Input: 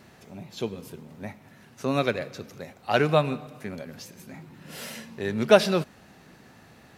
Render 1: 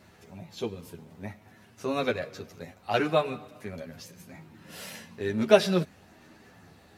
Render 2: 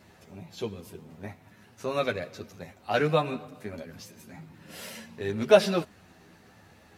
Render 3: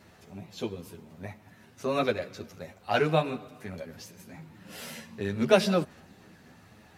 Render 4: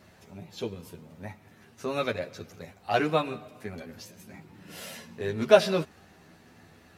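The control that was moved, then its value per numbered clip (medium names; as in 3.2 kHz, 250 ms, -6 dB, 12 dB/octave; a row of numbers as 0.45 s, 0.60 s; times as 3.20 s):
chorus, rate: 0.58 Hz, 1.1 Hz, 1.9 Hz, 0.23 Hz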